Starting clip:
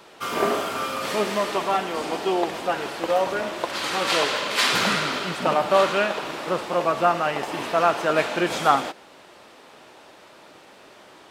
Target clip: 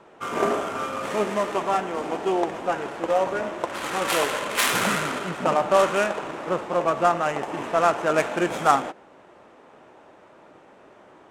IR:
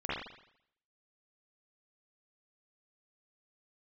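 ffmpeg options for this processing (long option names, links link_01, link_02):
-af "adynamicsmooth=sensitivity=1:basefreq=1800,aexciter=amount=3:drive=9.3:freq=6300"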